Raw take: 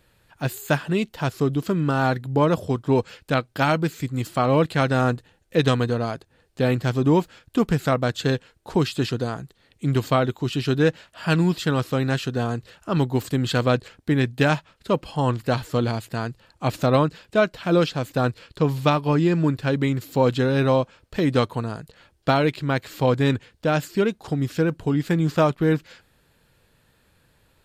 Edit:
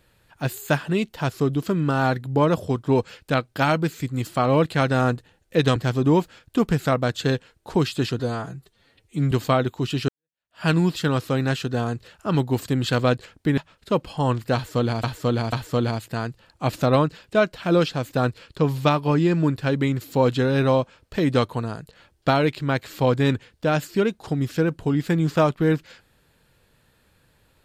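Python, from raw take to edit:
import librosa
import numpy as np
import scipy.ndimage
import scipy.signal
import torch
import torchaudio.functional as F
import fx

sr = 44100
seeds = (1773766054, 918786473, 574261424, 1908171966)

y = fx.edit(x, sr, fx.cut(start_s=5.76, length_s=1.0),
    fx.stretch_span(start_s=9.19, length_s=0.75, factor=1.5),
    fx.fade_in_span(start_s=10.71, length_s=0.55, curve='exp'),
    fx.cut(start_s=14.2, length_s=0.36),
    fx.repeat(start_s=15.53, length_s=0.49, count=3), tone=tone)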